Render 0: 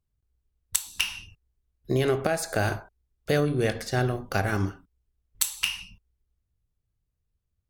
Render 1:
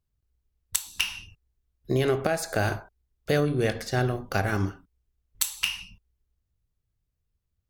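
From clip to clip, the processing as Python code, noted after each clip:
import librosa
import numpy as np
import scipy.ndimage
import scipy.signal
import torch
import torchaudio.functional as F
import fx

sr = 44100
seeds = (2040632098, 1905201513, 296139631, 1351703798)

y = fx.peak_eq(x, sr, hz=9100.0, db=-3.0, octaves=0.39)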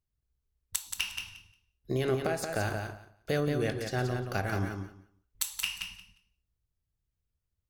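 y = fx.echo_feedback(x, sr, ms=177, feedback_pct=16, wet_db=-6.0)
y = y * librosa.db_to_amplitude(-6.0)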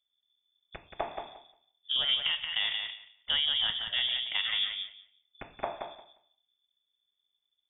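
y = fx.freq_invert(x, sr, carrier_hz=3500)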